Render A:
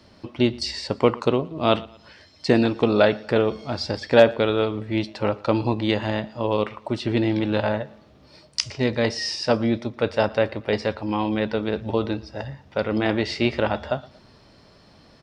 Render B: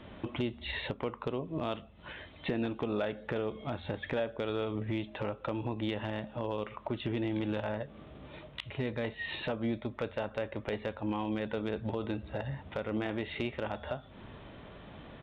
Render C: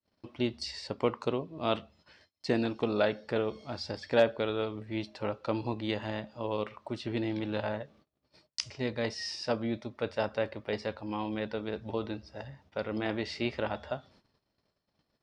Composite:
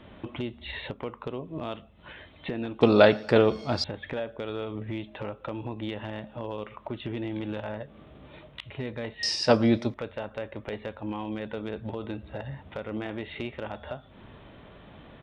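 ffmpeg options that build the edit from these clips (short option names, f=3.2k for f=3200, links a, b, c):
-filter_complex "[0:a]asplit=2[a][b];[1:a]asplit=3[c][d][e];[c]atrim=end=2.812[f];[a]atrim=start=2.808:end=3.842[g];[d]atrim=start=3.838:end=9.232[h];[b]atrim=start=9.228:end=9.942[i];[e]atrim=start=9.938[j];[f][g]acrossfade=d=0.004:c1=hsin:c2=hsin[k];[k][h]acrossfade=d=0.004:c1=hsin:c2=hsin[l];[l][i]acrossfade=d=0.004:c1=hsin:c2=hsin[m];[m][j]acrossfade=d=0.004:c1=hsin:c2=hsin"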